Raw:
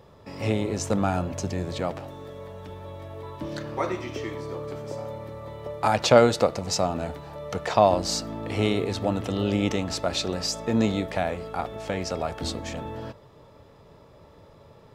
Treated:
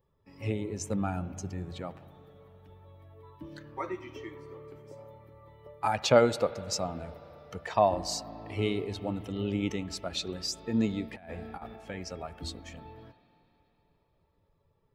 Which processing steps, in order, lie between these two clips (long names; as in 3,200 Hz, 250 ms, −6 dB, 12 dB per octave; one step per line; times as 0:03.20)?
spectral dynamics exaggerated over time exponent 1.5
spring reverb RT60 3.6 s, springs 35/58 ms, chirp 75 ms, DRR 15 dB
0:11.12–0:11.76: compressor whose output falls as the input rises −37 dBFS, ratio −0.5
level −3.5 dB